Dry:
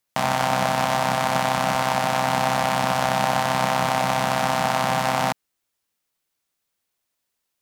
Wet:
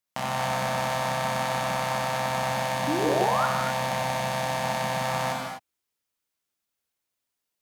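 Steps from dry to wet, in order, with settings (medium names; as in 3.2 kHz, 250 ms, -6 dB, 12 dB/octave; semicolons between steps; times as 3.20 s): 2.50–5.01 s: peaking EQ 1.3 kHz -6.5 dB 0.25 oct; 2.87–3.46 s: painted sound rise 270–1500 Hz -20 dBFS; gated-style reverb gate 280 ms flat, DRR -1 dB; trim -8.5 dB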